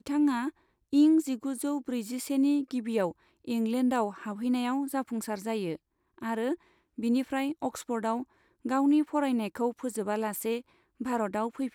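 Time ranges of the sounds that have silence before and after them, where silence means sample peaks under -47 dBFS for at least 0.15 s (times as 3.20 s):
0.93–3.12 s
3.45–5.76 s
6.18–6.55 s
6.98–8.24 s
8.65–10.61 s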